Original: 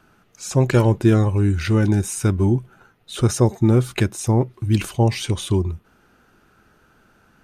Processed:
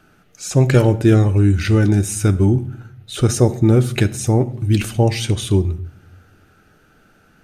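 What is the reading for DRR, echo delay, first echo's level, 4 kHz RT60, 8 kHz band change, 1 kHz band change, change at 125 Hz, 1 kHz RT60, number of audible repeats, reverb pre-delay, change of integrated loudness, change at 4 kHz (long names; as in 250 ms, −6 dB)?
11.0 dB, no echo audible, no echo audible, 0.45 s, +3.5 dB, +0.5 dB, +3.5 dB, 0.65 s, no echo audible, 7 ms, +3.0 dB, +3.0 dB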